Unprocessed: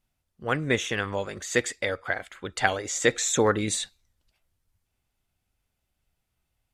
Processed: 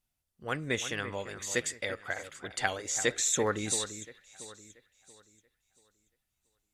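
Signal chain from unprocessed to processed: treble shelf 4 kHz +8.5 dB; echo whose repeats swap between lows and highs 341 ms, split 2.4 kHz, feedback 54%, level -11 dB; trim -8 dB

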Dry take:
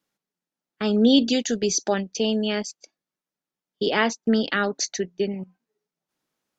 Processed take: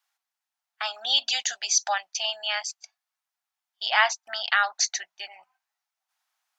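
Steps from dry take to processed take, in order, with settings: elliptic high-pass 720 Hz, stop band 40 dB; trim +3.5 dB

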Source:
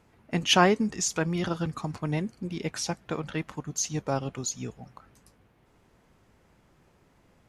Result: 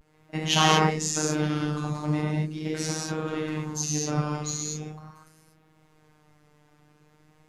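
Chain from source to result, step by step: gated-style reverb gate 270 ms flat, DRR -6.5 dB; robot voice 153 Hz; vibrato 0.41 Hz 41 cents; trim -3 dB

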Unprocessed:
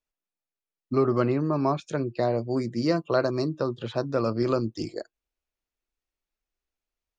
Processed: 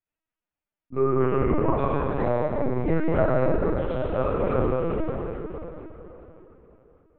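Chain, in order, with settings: low-pass 3 kHz 24 dB/octave; feedback comb 64 Hz, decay 0.6 s, harmonics all, mix 80%; reverberation RT60 3.8 s, pre-delay 8 ms, DRR -9.5 dB; LPC vocoder at 8 kHz pitch kept; trim +2.5 dB

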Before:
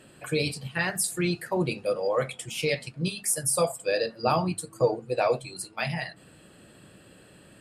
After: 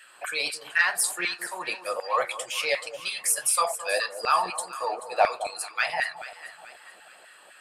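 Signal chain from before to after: vibrato 9.1 Hz 23 cents; LFO high-pass saw down 4 Hz 680–1800 Hz; in parallel at -9 dB: saturation -20 dBFS, distortion -13 dB; on the sum: echo whose repeats swap between lows and highs 216 ms, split 1 kHz, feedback 64%, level -11 dB

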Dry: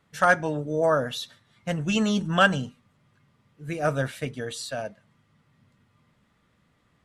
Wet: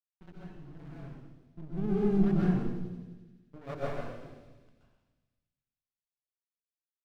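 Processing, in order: local Wiener filter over 41 samples; Doppler pass-by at 3.05 s, 23 m/s, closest 18 m; band-pass sweep 230 Hz -> 3.2 kHz, 2.58–6.09 s; frequency shift -21 Hz; hysteresis with a dead band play -39.5 dBFS; ten-band graphic EQ 250 Hz +3 dB, 500 Hz -12 dB, 8 kHz -7 dB; half-wave rectifier; feedback echo behind a high-pass 86 ms, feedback 75%, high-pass 3.9 kHz, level -7 dB; reverberation RT60 1.2 s, pre-delay 119 ms, DRR -7 dB; trim +2 dB

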